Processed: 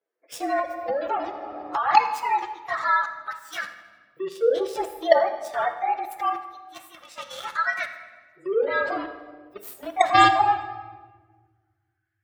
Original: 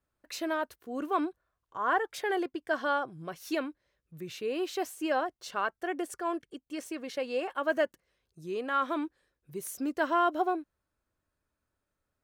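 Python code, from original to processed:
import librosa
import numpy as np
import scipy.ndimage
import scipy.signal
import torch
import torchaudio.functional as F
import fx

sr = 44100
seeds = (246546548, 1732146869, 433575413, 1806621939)

p1 = fx.partial_stretch(x, sr, pct=110)
p2 = fx.filter_lfo_highpass(p1, sr, shape='saw_up', hz=0.24, low_hz=430.0, high_hz=1800.0, q=5.6)
p3 = fx.quant_companded(p2, sr, bits=2)
p4 = p2 + F.gain(torch.from_numpy(p3), -8.0).numpy()
p5 = fx.spec_gate(p4, sr, threshold_db=-30, keep='strong')
p6 = scipy.signal.sosfilt(scipy.signal.butter(2, 49.0, 'highpass', fs=sr, output='sos'), p5)
p7 = p6 + fx.echo_feedback(p6, sr, ms=80, feedback_pct=59, wet_db=-21.0, dry=0)
p8 = fx.room_shoebox(p7, sr, seeds[0], volume_m3=1400.0, walls='mixed', distance_m=0.78)
y = fx.band_squash(p8, sr, depth_pct=100, at=(0.59, 1.83))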